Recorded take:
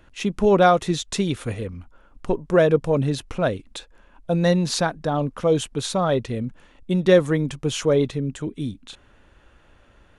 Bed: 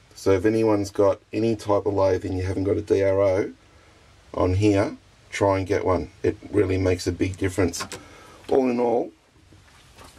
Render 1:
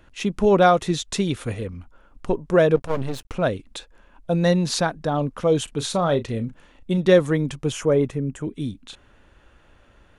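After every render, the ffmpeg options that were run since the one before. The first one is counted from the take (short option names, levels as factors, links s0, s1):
-filter_complex "[0:a]asplit=3[s0][s1][s2];[s0]afade=t=out:st=2.75:d=0.02[s3];[s1]aeval=exprs='max(val(0),0)':c=same,afade=t=in:st=2.75:d=0.02,afade=t=out:st=3.32:d=0.02[s4];[s2]afade=t=in:st=3.32:d=0.02[s5];[s3][s4][s5]amix=inputs=3:normalize=0,asettb=1/sr,asplit=3[s6][s7][s8];[s6]atrim=end=5.644[s9];[s7]atrim=start=5.64:end=6.98,asetpts=PTS-STARTPTS,afade=t=in:d=0.004:c=qsin,afade=t=out:st=1.336:d=0.004:c=qsin,asplit=2[s10][s11];[s11]adelay=35,volume=0.224[s12];[s10][s12]amix=inputs=2:normalize=0,atrim=end_sample=59094[s13];[s8]atrim=start=6.976[s14];[s9][s13]acrossfade=d=0.004:c1=hsin:c2=qsin[s15];[s15][s14]acrossfade=d=0.004:c1=qsin:c2=hsin,asettb=1/sr,asplit=3[s16][s17][s18];[s16]atrim=end=7.724[s19];[s17]atrim=start=7.72:end=8.45,asetpts=PTS-STARTPTS,afade=t=in:d=0.004:c=qsin,afade=t=out:st=0.726:d=0.004:c=qsin,equalizer=f=4000:w=1.9:g=-14[s20];[s18]atrim=start=8.446[s21];[s19][s20]acrossfade=d=0.004:c1=hsin:c2=qsin[s22];[s22][s21]acrossfade=d=0.004:c1=qsin:c2=hsin"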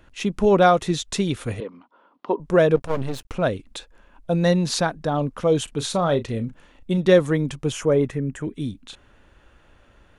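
-filter_complex "[0:a]asettb=1/sr,asplit=3[s0][s1][s2];[s0]atrim=end=1.604[s3];[s1]atrim=start=1.6:end=2.4,asetpts=PTS-STARTPTS,afade=t=in:d=0.004:c=qsin,afade=t=out:st=0.796:d=0.004:c=qsin,highpass=f=240:w=0.5412,highpass=f=240:w=1.3066,equalizer=f=990:t=q:w=4:g=9,equalizer=f=1600:t=q:w=4:g=-4,equalizer=f=2400:t=q:w=4:g=-5,lowpass=f=4100:w=0.5412,lowpass=f=4100:w=1.3066[s4];[s2]atrim=start=2.396[s5];[s3][s4]acrossfade=d=0.004:c1=hsin:c2=qsin[s6];[s6][s5]acrossfade=d=0.004:c1=qsin:c2=hsin,asettb=1/sr,asplit=3[s7][s8][s9];[s7]atrim=end=8.054[s10];[s8]atrim=start=8.05:end=8.55,asetpts=PTS-STARTPTS,afade=t=in:d=0.004:c=qsin,afade=t=out:st=0.496:d=0.004:c=qsin,equalizer=f=1800:w=2.8:g=8[s11];[s9]atrim=start=8.546[s12];[s10][s11]acrossfade=d=0.004:c1=hsin:c2=qsin[s13];[s13][s12]acrossfade=d=0.004:c1=qsin:c2=hsin"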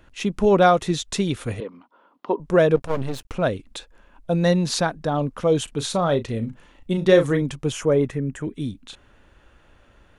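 -filter_complex "[0:a]asettb=1/sr,asplit=3[s0][s1][s2];[s0]atrim=end=6.394[s3];[s1]atrim=start=6.39:end=7.42,asetpts=PTS-STARTPTS,afade=t=in:d=0.004:c=qsin,afade=t=out:st=1.026:d=0.004:c=qsin,asplit=2[s4][s5];[s5]adelay=36,volume=0.398[s6];[s4][s6]amix=inputs=2:normalize=0,atrim=end_sample=45423[s7];[s2]atrim=start=7.416[s8];[s3][s7]acrossfade=d=0.004:c1=hsin:c2=qsin[s9];[s9][s8]acrossfade=d=0.004:c1=qsin:c2=hsin"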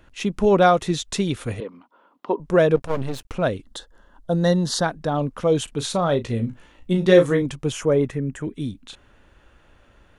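-filter_complex "[0:a]asettb=1/sr,asplit=3[s0][s1][s2];[s0]atrim=end=3.634[s3];[s1]atrim=start=3.63:end=4.84,asetpts=PTS-STARTPTS,afade=t=in:d=0.004:c=qsin,afade=t=out:st=1.206:d=0.004:c=qsin,asuperstop=centerf=2400:order=4:qfactor=2.5[s4];[s2]atrim=start=4.836[s5];[s3][s4]acrossfade=d=0.004:c1=hsin:c2=qsin[s6];[s6][s5]acrossfade=d=0.004:c1=qsin:c2=hsin,asettb=1/sr,asplit=3[s7][s8][s9];[s7]atrim=end=6.224[s10];[s8]atrim=start=6.22:end=7.46,asetpts=PTS-STARTPTS,afade=t=in:d=0.004:c=qsin,afade=t=out:st=1.236:d=0.004:c=qsin,asplit=2[s11][s12];[s12]adelay=17,volume=0.501[s13];[s11][s13]amix=inputs=2:normalize=0,atrim=end_sample=54684[s14];[s9]atrim=start=7.456[s15];[s10][s14]acrossfade=d=0.004:c1=hsin:c2=qsin[s16];[s16][s15]acrossfade=d=0.004:c1=qsin:c2=hsin"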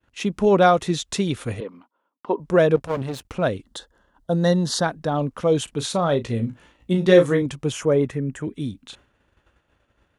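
-af "agate=range=0.0224:threshold=0.00562:ratio=3:detection=peak,highpass=49"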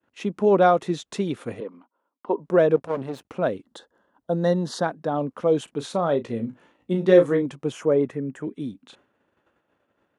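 -af "highpass=210,highshelf=f=2000:g=-11.5"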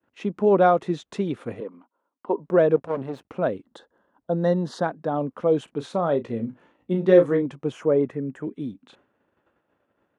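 -af "highshelf=f=4000:g=-11"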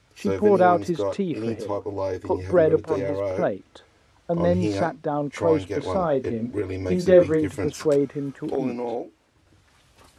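-filter_complex "[1:a]volume=0.447[s0];[0:a][s0]amix=inputs=2:normalize=0"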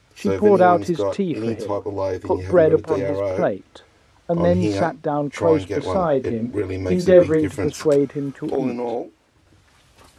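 -af "volume=1.5,alimiter=limit=0.794:level=0:latency=1"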